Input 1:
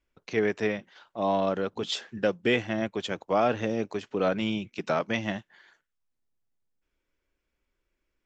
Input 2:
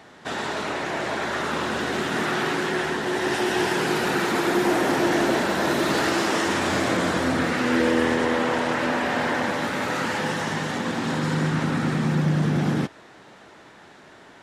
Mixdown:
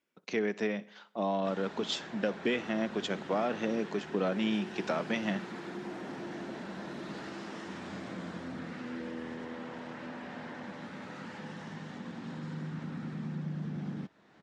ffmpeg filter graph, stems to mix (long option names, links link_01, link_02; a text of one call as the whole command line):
ffmpeg -i stem1.wav -i stem2.wav -filter_complex "[0:a]highpass=260,acompressor=threshold=-31dB:ratio=2.5,volume=-0.5dB,asplit=2[link_01][link_02];[link_02]volume=-21.5dB[link_03];[1:a]lowpass=6000,acompressor=threshold=-42dB:ratio=1.5,adelay=1200,volume=-13.5dB[link_04];[link_03]aecho=0:1:63|126|189|252|315|378|441|504:1|0.53|0.281|0.149|0.0789|0.0418|0.0222|0.0117[link_05];[link_01][link_04][link_05]amix=inputs=3:normalize=0,equalizer=frequency=190:width=1.8:gain=10" out.wav